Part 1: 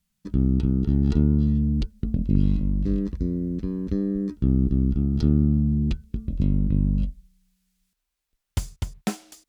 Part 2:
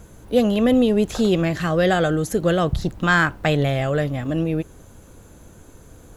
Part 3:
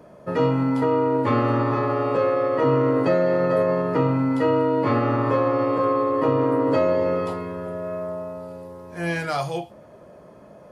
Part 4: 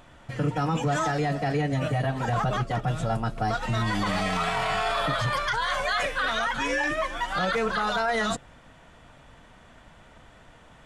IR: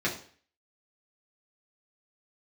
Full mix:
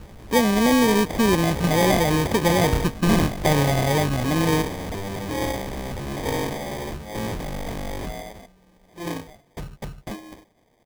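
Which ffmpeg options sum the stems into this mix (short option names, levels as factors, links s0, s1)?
-filter_complex "[0:a]highpass=f=45:p=1,acrossover=split=110|310|620[s0][s1][s2][s3];[s0]acompressor=threshold=0.00794:ratio=4[s4];[s1]acompressor=threshold=0.02:ratio=4[s5];[s2]acompressor=threshold=0.0141:ratio=4[s6];[s3]acompressor=threshold=0.00112:ratio=4[s7];[s4][s5][s6][s7]amix=inputs=4:normalize=0,aeval=exprs='0.106*sin(PI/2*8.91*val(0)/0.106)':c=same,adelay=1000,volume=0.398[s8];[1:a]volume=1.26[s9];[2:a]agate=range=0.0224:threshold=0.0158:ratio=3:detection=peak,equalizer=f=2300:w=0.68:g=4.5,aeval=exprs='val(0)*pow(10,-37*(0.5-0.5*cos(2*PI*1.1*n/s))/20)':c=same,volume=0.562[s10];[3:a]highpass=230,acompressor=threshold=0.00501:ratio=1.5,flanger=delay=5:depth=6.2:regen=-47:speed=0.44:shape=triangular,adelay=100,volume=0.531[s11];[s9][s10][s11]amix=inputs=3:normalize=0,highshelf=f=5500:g=7,acompressor=threshold=0.1:ratio=1.5,volume=1[s12];[s8][s12]amix=inputs=2:normalize=0,acrusher=samples=32:mix=1:aa=0.000001"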